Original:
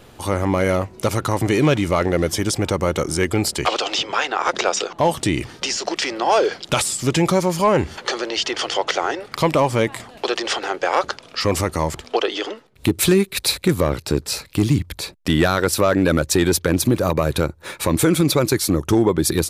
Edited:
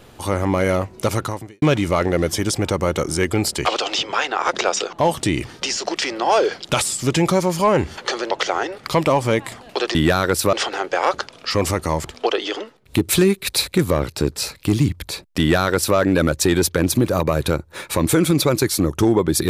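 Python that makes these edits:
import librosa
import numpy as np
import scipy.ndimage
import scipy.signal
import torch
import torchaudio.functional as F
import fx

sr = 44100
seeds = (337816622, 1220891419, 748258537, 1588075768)

y = fx.edit(x, sr, fx.fade_out_span(start_s=1.2, length_s=0.42, curve='qua'),
    fx.cut(start_s=8.31, length_s=0.48),
    fx.duplicate(start_s=15.29, length_s=0.58, to_s=10.43), tone=tone)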